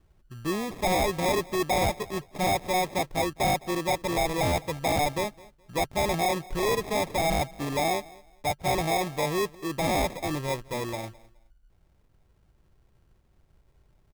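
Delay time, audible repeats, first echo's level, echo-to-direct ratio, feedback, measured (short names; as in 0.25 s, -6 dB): 0.21 s, 2, -22.0 dB, -22.0 dB, 23%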